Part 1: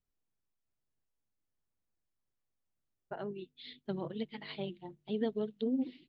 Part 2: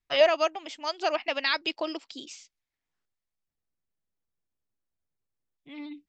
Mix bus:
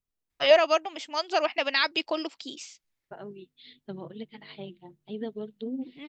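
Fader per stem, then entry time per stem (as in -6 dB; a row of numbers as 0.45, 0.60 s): -1.5, +2.0 dB; 0.00, 0.30 s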